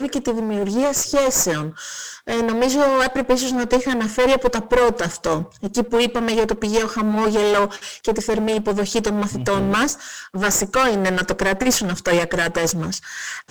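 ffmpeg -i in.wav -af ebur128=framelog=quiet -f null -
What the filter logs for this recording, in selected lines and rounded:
Integrated loudness:
  I:         -19.7 LUFS
  Threshold: -29.8 LUFS
Loudness range:
  LRA:         1.6 LU
  Threshold: -39.6 LUFS
  LRA low:   -20.2 LUFS
  LRA high:  -18.7 LUFS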